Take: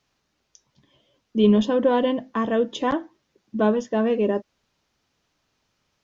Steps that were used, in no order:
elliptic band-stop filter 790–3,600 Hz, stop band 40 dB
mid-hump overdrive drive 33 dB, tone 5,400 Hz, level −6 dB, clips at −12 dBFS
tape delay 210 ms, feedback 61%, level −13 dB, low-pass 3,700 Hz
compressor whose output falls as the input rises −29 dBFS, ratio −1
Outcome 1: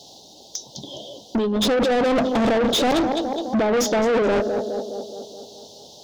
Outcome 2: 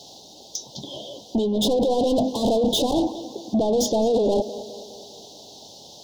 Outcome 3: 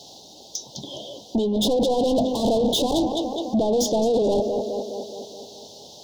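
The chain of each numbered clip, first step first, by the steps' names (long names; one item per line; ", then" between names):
elliptic band-stop filter, then compressor whose output falls as the input rises, then tape delay, then mid-hump overdrive
compressor whose output falls as the input rises, then mid-hump overdrive, then tape delay, then elliptic band-stop filter
compressor whose output falls as the input rises, then tape delay, then mid-hump overdrive, then elliptic band-stop filter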